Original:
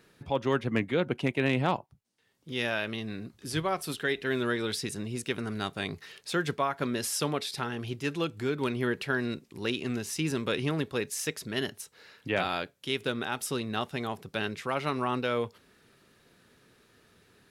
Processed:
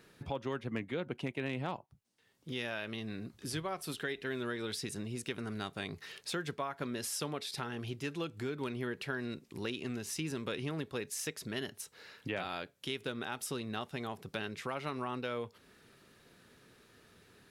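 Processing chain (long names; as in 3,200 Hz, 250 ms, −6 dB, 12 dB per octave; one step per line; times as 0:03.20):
downward compressor 2.5 to 1, threshold −38 dBFS, peak gain reduction 11.5 dB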